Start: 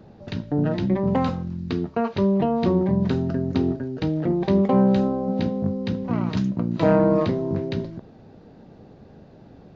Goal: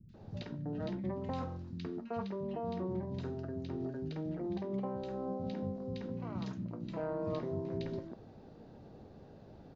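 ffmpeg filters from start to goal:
-filter_complex "[0:a]areverse,acompressor=threshold=-28dB:ratio=6,areverse,acrossover=split=210|2100[a][b][c];[c]adelay=90[d];[b]adelay=140[e];[a][e][d]amix=inputs=3:normalize=0,volume=-5.5dB"

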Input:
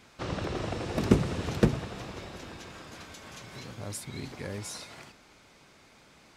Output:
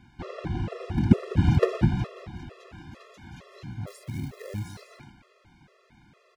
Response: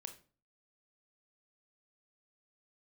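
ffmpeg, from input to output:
-filter_complex "[0:a]asettb=1/sr,asplit=3[a][b][c];[a]atrim=end=1.374[d];[b]atrim=start=1.37:end=2.07,asetpts=PTS-STARTPTS,afade=t=in:d=0.004:c=qsin,afade=t=out:st=0.696:d=0.004:c=qsin,acontrast=88[e];[c]atrim=start=2.066[f];[d][e]acrossfade=d=0.004:c1=hsin:c2=qsin[g];[g][f]acrossfade=d=0.004:c1=qsin:c2=hsin,bass=f=250:g=9,treble=f=4k:g=-11,asettb=1/sr,asplit=3[h][i][j];[h]atrim=end=3.874[k];[i]atrim=start=3.87:end=4.81,asetpts=PTS-STARTPTS,afade=t=in:d=0.004:c=qsin,afade=t=out:st=0.936:d=0.004:c=qsin,acrusher=bits=4:mode=log:mix=0:aa=0.000001[l];[j]atrim=start=4.806[m];[k][l]acrossfade=d=0.004:c1=hsin:c2=qsin[n];[n][m]acrossfade=d=0.004:c1=qsin:c2=hsin,asplit=2[o][p];[p]aecho=0:1:202:0.251[q];[o][q]amix=inputs=2:normalize=0,afftfilt=real='re*gt(sin(2*PI*2.2*pts/sr)*(1-2*mod(floor(b*sr/1024/350),2)),0)':imag='im*gt(sin(2*PI*2.2*pts/sr)*(1-2*mod(floor(b*sr/1024/350),2)),0)':win_size=1024:overlap=0.75"

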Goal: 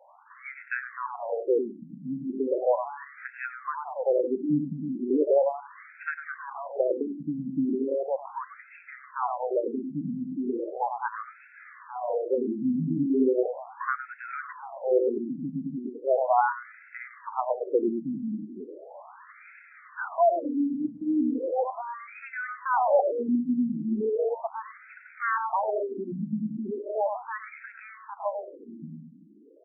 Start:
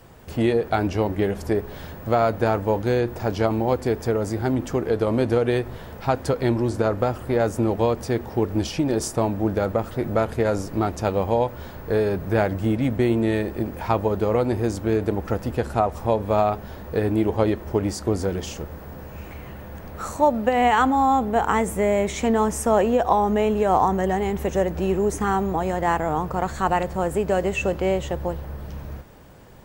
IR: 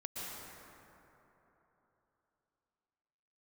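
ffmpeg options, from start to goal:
-filter_complex "[0:a]aemphasis=mode=production:type=cd,acrossover=split=360|2100[a][b][c];[c]acompressor=threshold=-43dB:ratio=20[d];[a][b][d]amix=inputs=3:normalize=0,asplit=2[e][f];[f]adelay=101,lowpass=f=930:p=1,volume=-4dB,asplit=2[g][h];[h]adelay=101,lowpass=f=930:p=1,volume=0.24,asplit=2[i][j];[j]adelay=101,lowpass=f=930:p=1,volume=0.24[k];[e][g][i][k]amix=inputs=4:normalize=0,asetrate=50951,aresample=44100,atempo=0.865537,afftfilt=real='re*between(b*sr/1024,210*pow(1900/210,0.5+0.5*sin(2*PI*0.37*pts/sr))/1.41,210*pow(1900/210,0.5+0.5*sin(2*PI*0.37*pts/sr))*1.41)':imag='im*between(b*sr/1024,210*pow(1900/210,0.5+0.5*sin(2*PI*0.37*pts/sr))/1.41,210*pow(1900/210,0.5+0.5*sin(2*PI*0.37*pts/sr))*1.41)':win_size=1024:overlap=0.75"

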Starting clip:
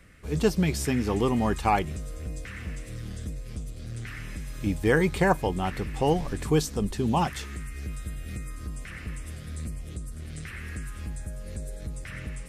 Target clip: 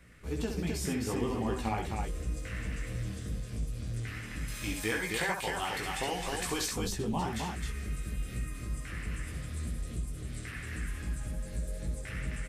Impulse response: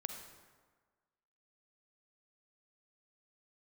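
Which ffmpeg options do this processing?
-filter_complex "[0:a]asettb=1/sr,asplit=3[a][b][c];[a]atrim=end=4.484[d];[b]atrim=start=4.48:end=6.68,asetpts=PTS-STARTPTS,afade=t=in:d=0.004:c=qsin,afade=t=out:st=2.196:d=0.004:c=qsin,tiltshelf=f=690:g=-9.5[e];[c]atrim=start=6.676[f];[d][e]acrossfade=d=0.004:c1=hsin:c2=qsin[g];[g][f]acrossfade=d=0.004:c1=qsin:c2=hsin,acompressor=threshold=-27dB:ratio=10,flanger=delay=16:depth=3.1:speed=2.6,aecho=1:1:67.06|262.4:0.501|0.631"

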